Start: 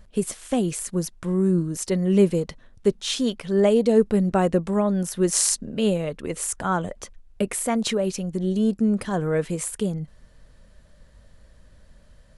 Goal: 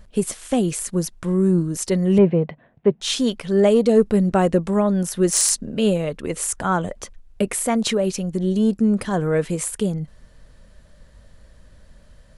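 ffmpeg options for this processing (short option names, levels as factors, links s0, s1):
-filter_complex "[0:a]asettb=1/sr,asplit=3[s0][s1][s2];[s0]atrim=end=2.184[s3];[s1]atrim=start=2.18:end=3.01,asetpts=PTS-STARTPTS,afade=t=in:d=0.004:c=qsin,afade=t=out:st=0.826:d=0.004:c=qsin,highpass=130,equalizer=f=150:t=q:w=4:g=7,equalizer=f=700:t=q:w=4:g=8,equalizer=f=1300:t=q:w=4:g=-6,lowpass=f=2500:w=0.5412,lowpass=f=2500:w=1.3066[s4];[s2]atrim=start=3.006[s5];[s3][s4]acrossfade=d=0.004:c1=hsin:c2=qsin[s6];[s6][s5]acrossfade=d=0.004:c1=qsin:c2=hsin,acontrast=33,volume=0.794"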